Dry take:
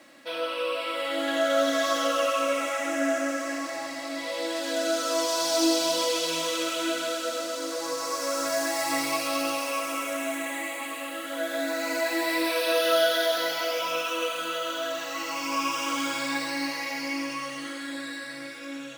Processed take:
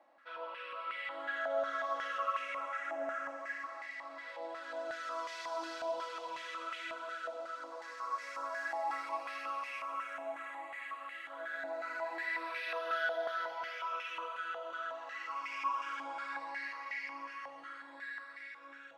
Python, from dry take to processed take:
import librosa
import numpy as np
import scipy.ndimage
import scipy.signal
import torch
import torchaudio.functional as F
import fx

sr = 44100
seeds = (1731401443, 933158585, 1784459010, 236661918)

y = fx.filter_held_bandpass(x, sr, hz=5.5, low_hz=810.0, high_hz=2000.0)
y = F.gain(torch.from_numpy(y), -2.0).numpy()